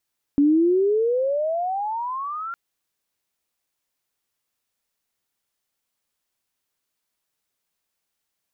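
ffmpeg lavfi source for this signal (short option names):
-f lavfi -i "aevalsrc='pow(10,(-13-15*t/2.16)/20)*sin(2*PI*280*2.16/log(1400/280)*(exp(log(1400/280)*t/2.16)-1))':d=2.16:s=44100"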